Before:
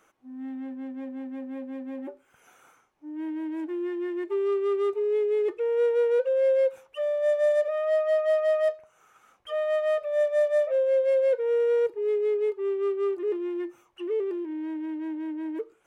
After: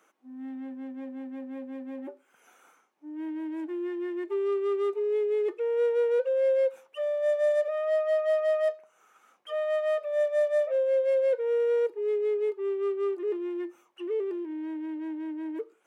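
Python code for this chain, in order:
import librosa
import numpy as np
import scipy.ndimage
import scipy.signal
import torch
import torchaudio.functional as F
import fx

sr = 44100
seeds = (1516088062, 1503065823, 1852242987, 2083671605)

y = scipy.signal.sosfilt(scipy.signal.butter(4, 200.0, 'highpass', fs=sr, output='sos'), x)
y = F.gain(torch.from_numpy(y), -2.0).numpy()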